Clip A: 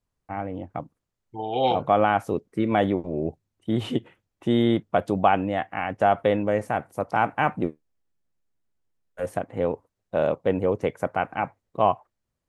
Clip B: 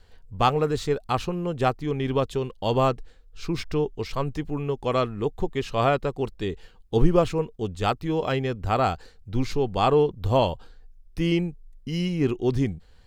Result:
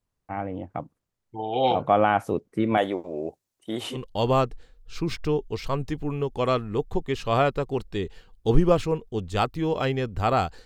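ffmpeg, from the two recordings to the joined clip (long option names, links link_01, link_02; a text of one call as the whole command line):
ffmpeg -i cue0.wav -i cue1.wav -filter_complex "[0:a]asettb=1/sr,asplit=3[link_01][link_02][link_03];[link_01]atrim=end=2.774[link_04];[link_02]atrim=start=2.77:end=3.98,asetpts=PTS-STARTPTS,afade=type=in:duration=0.004:curve=qsin,afade=type=out:start_time=1.206:duration=0.004:curve=qsin,bass=frequency=250:gain=-15,treble=frequency=4000:gain=8[link_05];[link_03]atrim=start=3.976[link_06];[link_04][link_05]acrossfade=duration=0.004:curve1=hsin:curve2=qsin[link_07];[link_07][link_06]acrossfade=duration=0.004:curve1=qsin:curve2=hsin,apad=whole_dur=10.65,atrim=end=10.65,atrim=end=3.98,asetpts=PTS-STARTPTS[link_08];[1:a]atrim=start=2.39:end=9.12,asetpts=PTS-STARTPTS[link_09];[link_08][link_09]acrossfade=duration=0.06:curve1=tri:curve2=tri" out.wav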